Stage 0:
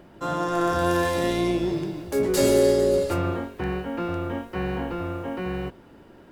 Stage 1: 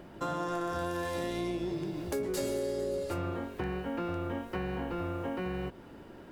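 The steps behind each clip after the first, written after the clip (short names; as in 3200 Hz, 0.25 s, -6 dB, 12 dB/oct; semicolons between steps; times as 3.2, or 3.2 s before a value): compressor 5:1, threshold -32 dBFS, peak gain reduction 15.5 dB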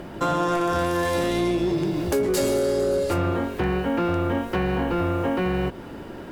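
sine folder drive 4 dB, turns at -21 dBFS; gain +4.5 dB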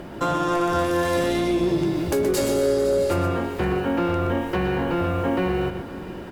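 tapped delay 0.123/0.509/0.661 s -8.5/-16/-20 dB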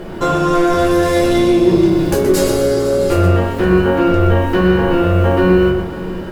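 reverb RT60 0.45 s, pre-delay 5 ms, DRR -2 dB; gain +3.5 dB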